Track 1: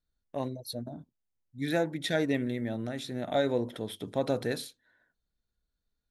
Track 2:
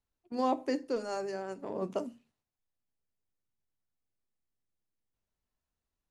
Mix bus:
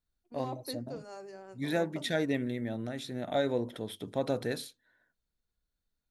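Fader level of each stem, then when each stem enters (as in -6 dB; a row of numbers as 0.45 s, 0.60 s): -2.0 dB, -10.0 dB; 0.00 s, 0.00 s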